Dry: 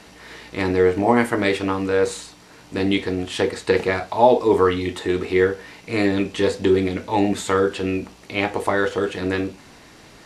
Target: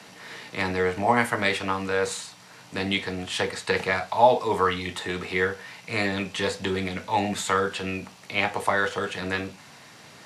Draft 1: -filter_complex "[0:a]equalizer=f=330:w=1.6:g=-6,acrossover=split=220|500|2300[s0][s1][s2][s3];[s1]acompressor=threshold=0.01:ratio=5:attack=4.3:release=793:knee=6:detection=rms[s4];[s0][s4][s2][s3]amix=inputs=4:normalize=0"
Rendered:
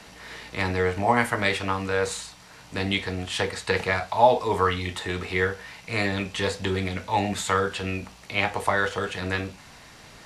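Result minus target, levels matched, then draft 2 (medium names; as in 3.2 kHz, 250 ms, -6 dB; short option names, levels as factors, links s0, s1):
125 Hz band +4.0 dB
-filter_complex "[0:a]highpass=f=110:w=0.5412,highpass=f=110:w=1.3066,equalizer=f=330:w=1.6:g=-6,acrossover=split=220|500|2300[s0][s1][s2][s3];[s1]acompressor=threshold=0.01:ratio=5:attack=4.3:release=793:knee=6:detection=rms[s4];[s0][s4][s2][s3]amix=inputs=4:normalize=0"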